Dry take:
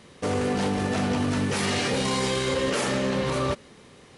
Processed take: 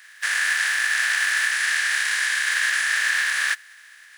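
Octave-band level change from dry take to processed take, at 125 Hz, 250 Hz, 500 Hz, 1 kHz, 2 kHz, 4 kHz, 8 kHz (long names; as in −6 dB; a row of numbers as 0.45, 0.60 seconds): below −40 dB, below −40 dB, below −25 dB, −4.5 dB, +14.5 dB, +4.5 dB, +7.5 dB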